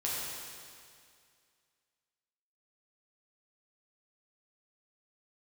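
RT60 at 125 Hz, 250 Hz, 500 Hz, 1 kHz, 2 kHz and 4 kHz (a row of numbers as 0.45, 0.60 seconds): 2.2, 2.2, 2.2, 2.2, 2.2, 2.2 seconds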